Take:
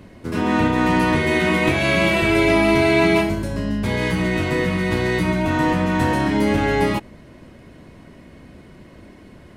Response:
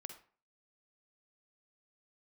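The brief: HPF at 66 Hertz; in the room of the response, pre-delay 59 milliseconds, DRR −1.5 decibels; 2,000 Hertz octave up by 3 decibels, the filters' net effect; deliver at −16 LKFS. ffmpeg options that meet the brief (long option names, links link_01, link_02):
-filter_complex "[0:a]highpass=66,equalizer=frequency=2000:width_type=o:gain=3.5,asplit=2[link_01][link_02];[1:a]atrim=start_sample=2205,adelay=59[link_03];[link_02][link_03]afir=irnorm=-1:irlink=0,volume=6dB[link_04];[link_01][link_04]amix=inputs=2:normalize=0,volume=-2dB"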